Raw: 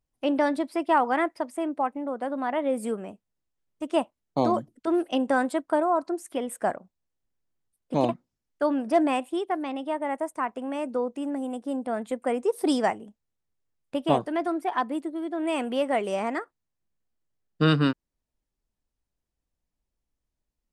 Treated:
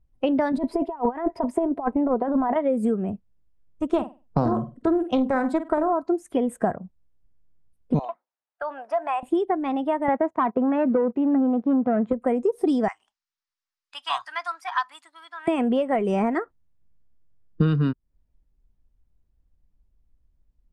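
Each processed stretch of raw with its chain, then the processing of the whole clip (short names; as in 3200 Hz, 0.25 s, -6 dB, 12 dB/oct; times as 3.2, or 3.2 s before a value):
0.52–2.56 high shelf 4200 Hz -4.5 dB + negative-ratio compressor -31 dBFS, ratio -0.5 + small resonant body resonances 410/670/940 Hz, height 9 dB, ringing for 30 ms
3.92–5.93 flutter echo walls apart 8.5 m, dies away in 0.26 s + Doppler distortion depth 0.24 ms
7.99–9.23 HPF 740 Hz 24 dB/oct + tilt -2.5 dB/oct + compressor 2.5:1, threshold -30 dBFS
10.08–12.13 sample leveller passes 2 + BPF 130–2300 Hz
12.88–15.48 inverse Chebyshev high-pass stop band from 520 Hz + bell 5100 Hz +10.5 dB 0.93 oct
whole clip: spectral noise reduction 7 dB; RIAA curve playback; compressor 8:1, threshold -28 dBFS; gain +9 dB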